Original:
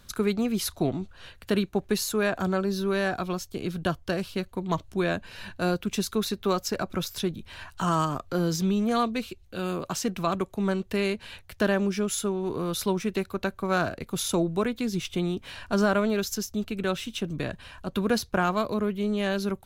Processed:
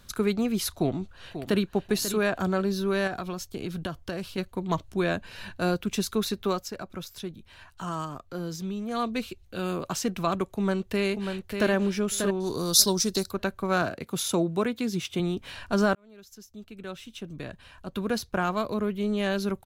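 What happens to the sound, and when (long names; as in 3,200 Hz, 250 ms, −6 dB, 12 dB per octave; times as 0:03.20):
0:00.75–0:01.71: delay throw 540 ms, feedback 30%, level −10.5 dB
0:03.07–0:04.38: downward compressor 4 to 1, threshold −28 dBFS
0:06.41–0:09.18: duck −8 dB, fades 0.30 s
0:10.54–0:11.71: delay throw 590 ms, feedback 15%, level −6 dB
0:12.40–0:13.31: high shelf with overshoot 3,500 Hz +12 dB, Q 3
0:13.82–0:15.20: high-pass filter 110 Hz
0:15.95–0:19.19: fade in linear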